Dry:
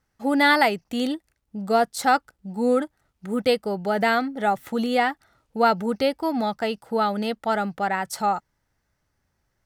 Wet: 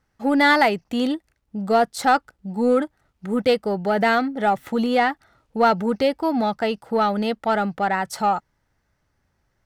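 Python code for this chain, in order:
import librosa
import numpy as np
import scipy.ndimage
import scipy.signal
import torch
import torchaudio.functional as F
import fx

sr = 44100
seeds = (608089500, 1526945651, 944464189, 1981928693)

p1 = fx.high_shelf(x, sr, hz=5900.0, db=-7.5)
p2 = 10.0 ** (-21.0 / 20.0) * np.tanh(p1 / 10.0 ** (-21.0 / 20.0))
y = p1 + (p2 * 10.0 ** (-5.0 / 20.0))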